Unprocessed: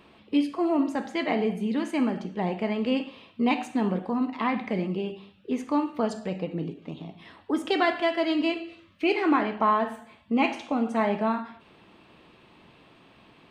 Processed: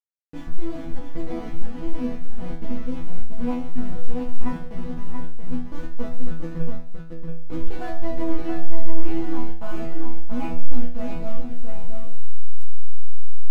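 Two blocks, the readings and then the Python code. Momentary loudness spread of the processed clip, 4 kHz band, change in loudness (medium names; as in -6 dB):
10 LU, -13.5 dB, -6.0 dB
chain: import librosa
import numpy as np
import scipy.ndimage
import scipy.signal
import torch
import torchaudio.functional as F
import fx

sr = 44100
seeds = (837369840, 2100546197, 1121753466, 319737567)

p1 = fx.delta_hold(x, sr, step_db=-22.5)
p2 = fx.riaa(p1, sr, side='playback')
p3 = fx.rider(p2, sr, range_db=10, speed_s=0.5)
p4 = p2 + F.gain(torch.from_numpy(p3), 1.0).numpy()
p5 = fx.resonator_bank(p4, sr, root=52, chord='fifth', decay_s=0.48)
y = p5 + fx.echo_single(p5, sr, ms=680, db=-5.0, dry=0)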